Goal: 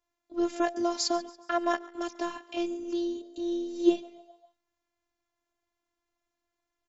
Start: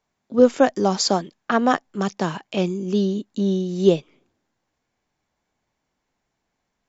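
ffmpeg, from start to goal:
-filter_complex "[0:a]asplit=5[a][b][c][d][e];[b]adelay=140,afreqshift=80,volume=-21dB[f];[c]adelay=280,afreqshift=160,volume=-27.2dB[g];[d]adelay=420,afreqshift=240,volume=-33.4dB[h];[e]adelay=560,afreqshift=320,volume=-39.6dB[i];[a][f][g][h][i]amix=inputs=5:normalize=0,afftfilt=real='hypot(re,im)*cos(PI*b)':imag='0':win_size=512:overlap=0.75,volume=-4.5dB"

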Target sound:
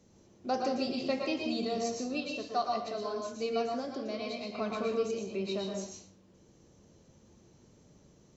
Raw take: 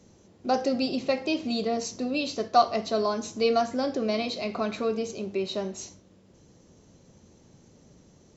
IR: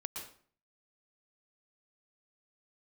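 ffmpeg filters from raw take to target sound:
-filter_complex "[0:a]asettb=1/sr,asplit=3[a][b][c];[a]atrim=end=2.204[d];[b]atrim=start=2.2:end=4.58,asetpts=PTS-STARTPTS,afade=t=in:d=0.004:c=qsin,afade=t=out:st=2.376:d=0.004:c=qsin,flanger=delay=2.8:depth=2:regen=89:speed=1.1:shape=sinusoidal[e];[c]atrim=start=4.576[f];[d][e]acrossfade=d=0.004:c1=hsin:c2=qsin[g];[g][f]acrossfade=d=0.004:c1=qsin:c2=hsin[h];[1:a]atrim=start_sample=2205[i];[h][i]afir=irnorm=-1:irlink=0,volume=-3.5dB"

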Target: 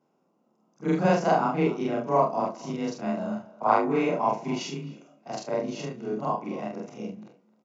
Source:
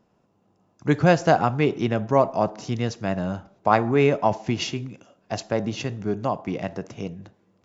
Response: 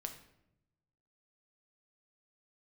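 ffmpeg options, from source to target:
-filter_complex "[0:a]afftfilt=real='re':imag='-im':win_size=4096:overlap=0.75,highpass=f=130:w=0.5412,highpass=f=130:w=1.3066,equalizer=f=3.4k:t=o:w=1:g=-5,bandreject=f=1.7k:w=6,adynamicequalizer=threshold=0.00501:dfrequency=980:dqfactor=5.8:tfrequency=980:tqfactor=5.8:attack=5:release=100:ratio=0.375:range=3:mode=boostabove:tftype=bell,afreqshift=19,asplit=2[a][b];[b]adelay=28,volume=-8dB[c];[a][c]amix=inputs=2:normalize=0,asplit=2[d][e];[e]adelay=260,highpass=300,lowpass=3.4k,asoftclip=type=hard:threshold=-15.5dB,volume=-18dB[f];[d][f]amix=inputs=2:normalize=0,aresample=16000,aresample=44100"

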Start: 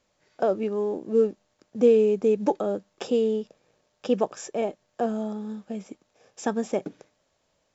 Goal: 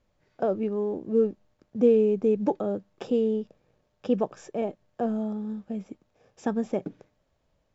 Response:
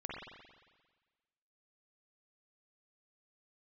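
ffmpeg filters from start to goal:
-af "aemphasis=mode=reproduction:type=bsi,volume=-4dB"

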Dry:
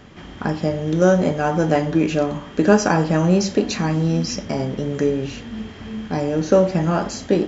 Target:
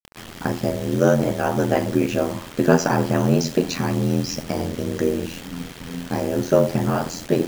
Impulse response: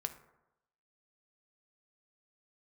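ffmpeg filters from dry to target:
-af "acrusher=bits=5:mix=0:aa=0.000001,aeval=exprs='val(0)*sin(2*PI*42*n/s)':c=same,volume=1dB"

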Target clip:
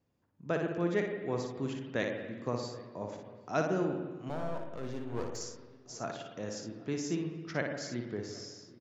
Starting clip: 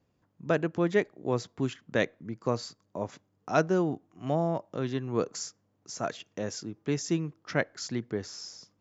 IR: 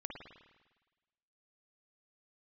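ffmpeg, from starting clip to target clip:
-filter_complex "[0:a]asplit=2[a][b];[b]adelay=782,lowpass=f=1.5k:p=1,volume=-22dB,asplit=2[c][d];[d]adelay=782,lowpass=f=1.5k:p=1,volume=0.52,asplit=2[e][f];[f]adelay=782,lowpass=f=1.5k:p=1,volume=0.52,asplit=2[g][h];[h]adelay=782,lowpass=f=1.5k:p=1,volume=0.52[i];[c][e][g][i]amix=inputs=4:normalize=0[j];[a][j]amix=inputs=2:normalize=0,asettb=1/sr,asplit=3[k][l][m];[k]atrim=end=4.294[n];[l]atrim=start=4.29:end=5.37,asetpts=PTS-STARTPTS,afade=t=in:d=0.004:c=qsin,afade=t=out:st=1.076:d=0.004:c=qsin,aeval=exprs='clip(val(0),-1,0.0188)':c=same[o];[m]atrim=start=5.366[p];[n][o]acrossfade=d=0.004:c1=hsin:c2=qsin[q];[q][p]acrossfade=d=0.004:c1=qsin:c2=hsin,asplit=2[r][s];[1:a]atrim=start_sample=2205,adelay=58[t];[s][t]afir=irnorm=-1:irlink=0,volume=-1dB[u];[r][u]amix=inputs=2:normalize=0,volume=-6.5dB"

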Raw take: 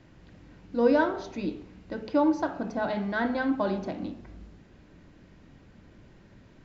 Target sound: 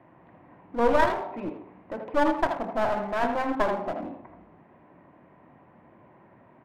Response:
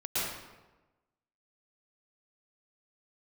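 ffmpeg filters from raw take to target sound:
-filter_complex "[0:a]highpass=190,equalizer=f=200:t=q:w=4:g=-5,equalizer=f=290:t=q:w=4:g=-4,equalizer=f=440:t=q:w=4:g=-4,equalizer=f=700:t=q:w=4:g=6,equalizer=f=1k:t=q:w=4:g=8,equalizer=f=1.5k:t=q:w=4:g=-7,lowpass=f=2k:w=0.5412,lowpass=f=2k:w=1.3066,aeval=exprs='clip(val(0),-1,0.0188)':c=same,asplit=2[a][b];[b]adelay=80,highpass=300,lowpass=3.4k,asoftclip=type=hard:threshold=-20.5dB,volume=-7dB[c];[a][c]amix=inputs=2:normalize=0,volume=3.5dB"

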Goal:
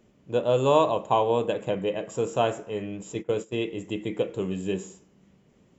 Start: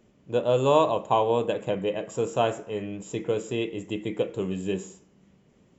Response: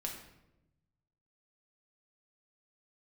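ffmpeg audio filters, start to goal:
-filter_complex "[0:a]asplit=3[a][b][c];[a]afade=t=out:st=3.13:d=0.02[d];[b]agate=range=-16dB:threshold=-30dB:ratio=16:detection=peak,afade=t=in:st=3.13:d=0.02,afade=t=out:st=3.61:d=0.02[e];[c]afade=t=in:st=3.61:d=0.02[f];[d][e][f]amix=inputs=3:normalize=0"

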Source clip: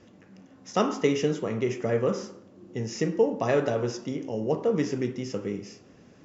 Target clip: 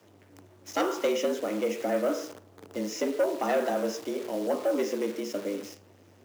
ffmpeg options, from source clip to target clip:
-af "aeval=exprs='(tanh(8.91*val(0)+0.1)-tanh(0.1))/8.91':c=same,highpass=f=79:w=0.5412,highpass=f=79:w=1.3066,acrusher=bits=8:dc=4:mix=0:aa=0.000001,afreqshift=96"

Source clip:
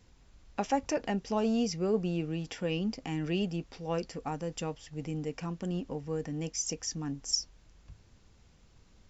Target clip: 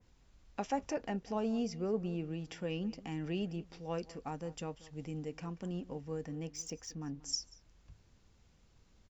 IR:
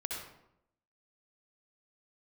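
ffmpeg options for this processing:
-filter_complex "[0:a]asettb=1/sr,asplit=3[a][b][c];[a]atrim=end=6.354[d];[b]atrim=start=6.35:end=7.23,asetpts=PTS-STARTPTS,afade=t=in:d=0.004:c=qsin,afade=t=out:st=0.876:d=0.004:c=qsin,adynamicsmooth=sensitivity=7:basefreq=5.4k[e];[c]atrim=start=7.226[f];[d][e]acrossfade=d=0.004:c1=hsin:c2=qsin[g];[g][f]acrossfade=d=0.004:c1=qsin:c2=hsin,asplit=2[h][i];[i]adelay=186.6,volume=-19dB,highshelf=f=4k:g=-4.2[j];[h][j]amix=inputs=2:normalize=0,adynamicequalizer=threshold=0.00316:dfrequency=2500:dqfactor=0.7:tfrequency=2500:tqfactor=0.7:attack=5:release=100:ratio=0.375:range=3:mode=cutabove:tftype=highshelf,volume=-5.5dB"

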